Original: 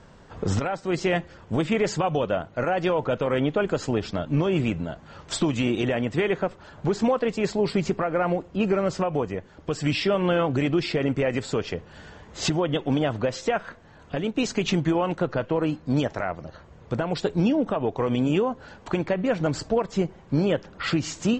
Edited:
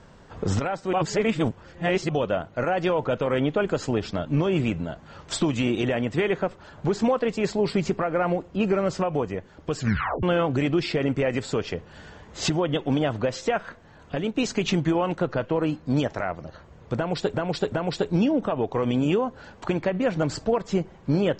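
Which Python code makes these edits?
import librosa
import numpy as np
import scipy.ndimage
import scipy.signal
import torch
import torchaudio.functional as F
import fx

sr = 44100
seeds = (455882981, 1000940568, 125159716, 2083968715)

y = fx.edit(x, sr, fx.reverse_span(start_s=0.93, length_s=1.16),
    fx.tape_stop(start_s=9.78, length_s=0.45),
    fx.repeat(start_s=16.96, length_s=0.38, count=3), tone=tone)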